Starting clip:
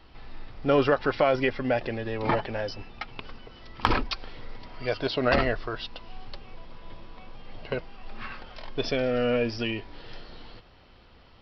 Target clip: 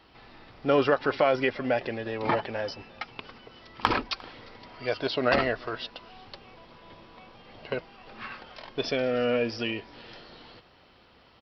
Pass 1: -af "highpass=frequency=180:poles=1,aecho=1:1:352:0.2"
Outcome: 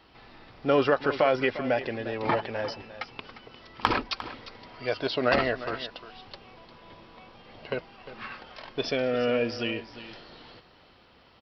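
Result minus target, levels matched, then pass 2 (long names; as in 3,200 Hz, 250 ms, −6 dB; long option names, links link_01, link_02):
echo-to-direct +10.5 dB
-af "highpass=frequency=180:poles=1,aecho=1:1:352:0.0596"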